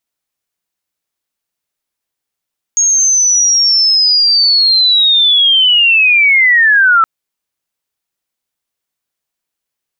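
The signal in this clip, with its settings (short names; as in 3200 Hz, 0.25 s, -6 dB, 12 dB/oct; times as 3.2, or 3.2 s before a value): chirp linear 6600 Hz -> 1300 Hz -7.5 dBFS -> -5 dBFS 4.27 s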